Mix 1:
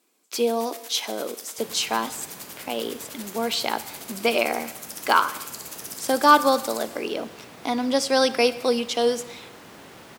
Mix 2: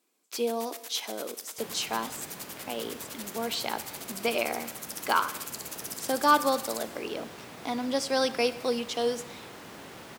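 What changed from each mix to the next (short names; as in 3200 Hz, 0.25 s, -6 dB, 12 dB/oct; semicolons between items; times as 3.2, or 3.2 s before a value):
speech -6.5 dB; first sound: send -6.5 dB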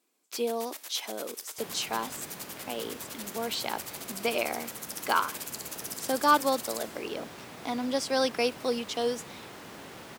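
speech: send off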